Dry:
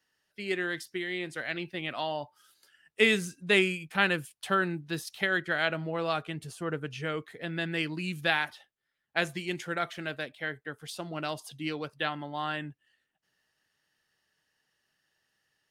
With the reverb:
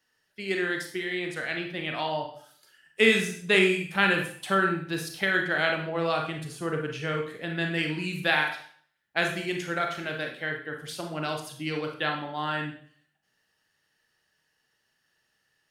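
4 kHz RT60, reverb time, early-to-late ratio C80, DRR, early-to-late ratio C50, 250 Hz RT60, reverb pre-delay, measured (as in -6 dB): 0.50 s, 0.55 s, 10.0 dB, 2.0 dB, 6.0 dB, 0.55 s, 26 ms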